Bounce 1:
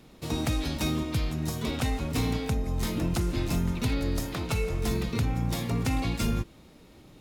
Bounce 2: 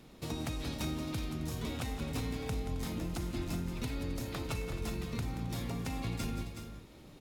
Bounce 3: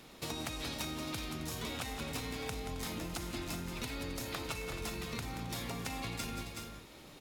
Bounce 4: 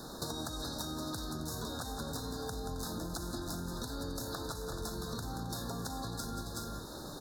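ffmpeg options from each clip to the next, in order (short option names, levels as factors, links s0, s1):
-filter_complex "[0:a]acompressor=threshold=0.02:ratio=3,asplit=2[s0][s1];[s1]aecho=0:1:179|267|372|425:0.299|0.158|0.376|0.141[s2];[s0][s2]amix=inputs=2:normalize=0,volume=0.75"
-af "lowshelf=f=430:g=-11,acompressor=threshold=0.00794:ratio=6,volume=2.11"
-af "acompressor=threshold=0.00501:ratio=6,asuperstop=centerf=2500:order=20:qfactor=1.3,volume=3.16"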